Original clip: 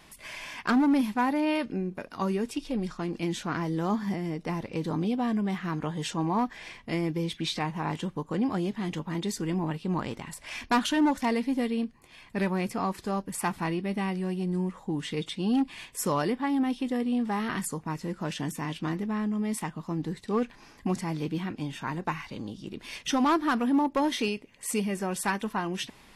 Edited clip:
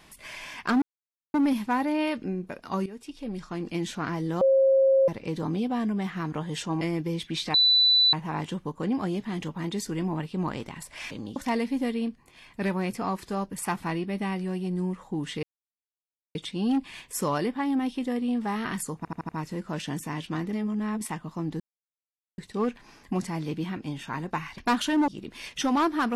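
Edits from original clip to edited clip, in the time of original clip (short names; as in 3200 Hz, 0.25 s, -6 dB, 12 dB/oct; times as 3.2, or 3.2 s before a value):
0.82 insert silence 0.52 s
2.34–3.16 fade in, from -14.5 dB
3.89–4.56 bleep 537 Hz -16.5 dBFS
6.29–6.91 cut
7.64 add tone 3980 Hz -16.5 dBFS 0.59 s
10.62–11.12 swap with 22.32–22.57
15.19 insert silence 0.92 s
17.81 stutter 0.08 s, 5 plays
19.05–19.53 reverse
20.12 insert silence 0.78 s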